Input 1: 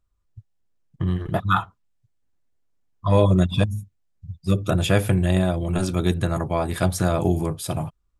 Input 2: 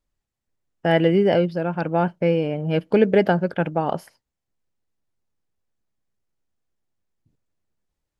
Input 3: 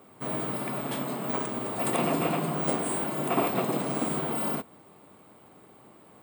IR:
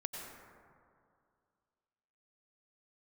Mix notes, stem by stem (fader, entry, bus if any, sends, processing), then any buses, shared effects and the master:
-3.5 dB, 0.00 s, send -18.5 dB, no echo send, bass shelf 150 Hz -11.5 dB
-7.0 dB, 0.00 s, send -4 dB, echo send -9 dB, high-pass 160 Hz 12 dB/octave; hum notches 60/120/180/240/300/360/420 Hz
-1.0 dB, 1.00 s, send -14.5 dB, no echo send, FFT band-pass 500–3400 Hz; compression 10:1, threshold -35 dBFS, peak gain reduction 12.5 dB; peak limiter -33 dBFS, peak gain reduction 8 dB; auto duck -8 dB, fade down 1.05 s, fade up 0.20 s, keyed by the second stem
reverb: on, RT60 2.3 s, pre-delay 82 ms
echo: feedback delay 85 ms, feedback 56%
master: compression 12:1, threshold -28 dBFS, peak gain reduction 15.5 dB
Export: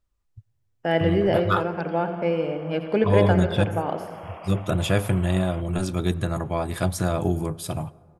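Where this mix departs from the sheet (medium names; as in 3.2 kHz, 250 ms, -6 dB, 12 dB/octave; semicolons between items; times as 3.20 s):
stem 1: missing bass shelf 150 Hz -11.5 dB; master: missing compression 12:1, threshold -28 dBFS, peak gain reduction 15.5 dB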